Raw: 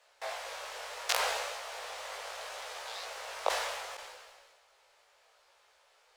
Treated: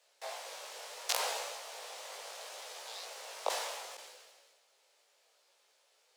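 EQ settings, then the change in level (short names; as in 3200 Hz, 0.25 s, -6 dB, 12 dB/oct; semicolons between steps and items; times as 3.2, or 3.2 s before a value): steep high-pass 180 Hz 96 dB/oct; bell 1200 Hz -11.5 dB 2.6 oct; dynamic EQ 930 Hz, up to +6 dB, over -57 dBFS, Q 1.5; +1.5 dB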